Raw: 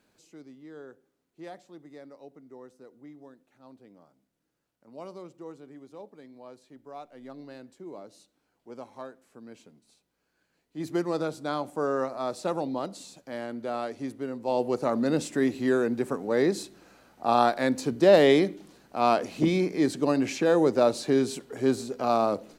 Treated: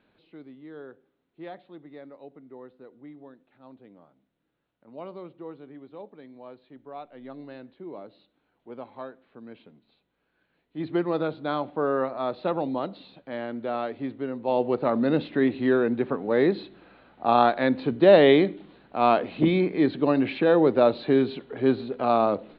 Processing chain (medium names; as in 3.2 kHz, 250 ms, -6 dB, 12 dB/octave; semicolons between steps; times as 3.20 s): steep low-pass 4 kHz 72 dB/octave; trim +2.5 dB